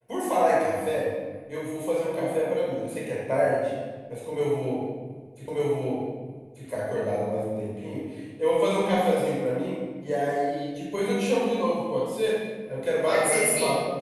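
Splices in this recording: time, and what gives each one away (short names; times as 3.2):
5.48 repeat of the last 1.19 s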